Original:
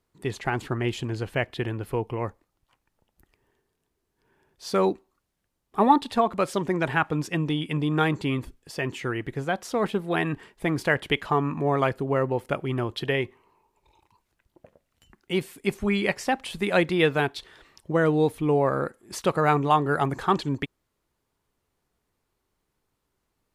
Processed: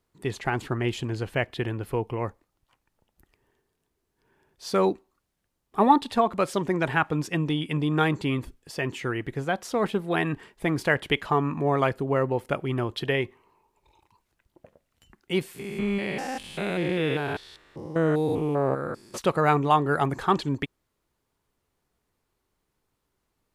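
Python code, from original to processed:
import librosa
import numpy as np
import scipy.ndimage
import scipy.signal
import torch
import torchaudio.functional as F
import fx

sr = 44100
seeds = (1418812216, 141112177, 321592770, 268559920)

y = fx.spec_steps(x, sr, hold_ms=200, at=(15.54, 19.16), fade=0.02)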